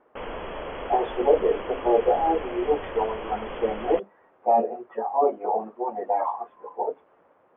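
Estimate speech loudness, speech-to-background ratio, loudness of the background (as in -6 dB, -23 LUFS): -25.5 LUFS, 10.0 dB, -35.5 LUFS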